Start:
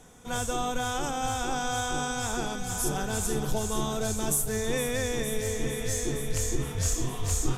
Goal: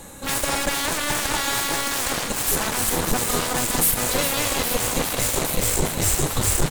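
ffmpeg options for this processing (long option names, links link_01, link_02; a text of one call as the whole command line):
ffmpeg -i in.wav -filter_complex "[0:a]highshelf=frequency=6600:gain=7,asplit=2[link_01][link_02];[link_02]alimiter=limit=-24dB:level=0:latency=1,volume=-1dB[link_03];[link_01][link_03]amix=inputs=2:normalize=0,aeval=exprs='0.251*(cos(1*acos(clip(val(0)/0.251,-1,1)))-cos(1*PI/2))+0.0282*(cos(3*acos(clip(val(0)/0.251,-1,1)))-cos(3*PI/2))+0.0501*(cos(7*acos(clip(val(0)/0.251,-1,1)))-cos(7*PI/2))':channel_layout=same,asoftclip=type=tanh:threshold=-21.5dB,asetrate=49833,aresample=44100,aecho=1:1:250:0.2,volume=8.5dB" out.wav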